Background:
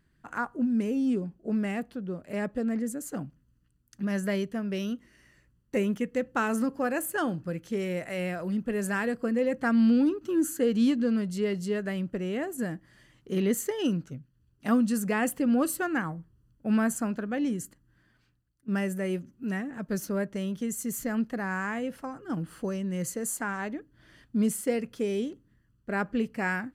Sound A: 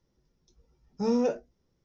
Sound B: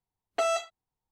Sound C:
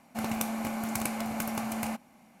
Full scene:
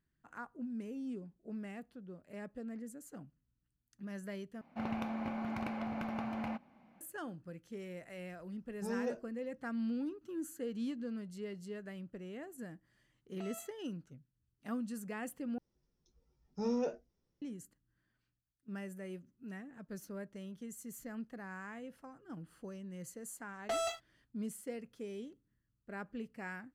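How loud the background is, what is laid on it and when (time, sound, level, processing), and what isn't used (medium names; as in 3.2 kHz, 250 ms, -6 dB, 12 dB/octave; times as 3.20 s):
background -15 dB
4.61 s: replace with C -4.5 dB + distance through air 320 m
7.82 s: add A -12.5 dB
13.02 s: add B -15.5 dB + compression, threshold -32 dBFS
15.58 s: replace with A -8.5 dB
23.31 s: add B -13.5 dB + waveshaping leveller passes 3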